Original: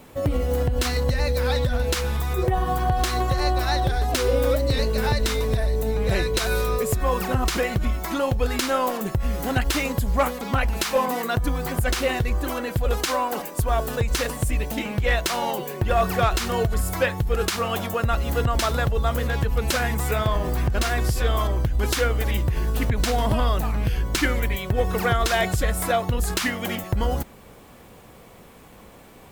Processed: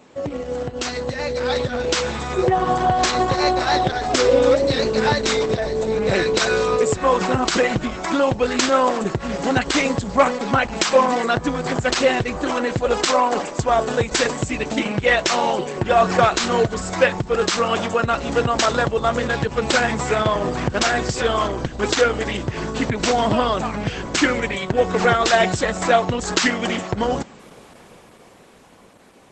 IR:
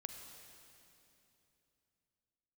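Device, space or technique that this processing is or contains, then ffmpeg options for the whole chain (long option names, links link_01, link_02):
video call: -af "highpass=170,dynaudnorm=framelen=110:gausssize=31:maxgain=10dB" -ar 48000 -c:a libopus -b:a 12k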